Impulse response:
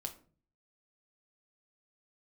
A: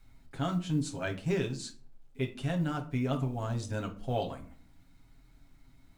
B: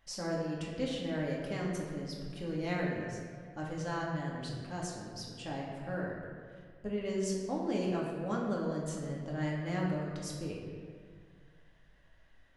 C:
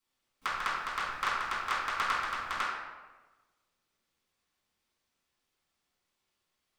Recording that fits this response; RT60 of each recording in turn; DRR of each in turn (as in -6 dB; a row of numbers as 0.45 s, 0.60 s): A; 0.45 s, 2.0 s, 1.2 s; 2.5 dB, -4.0 dB, -11.0 dB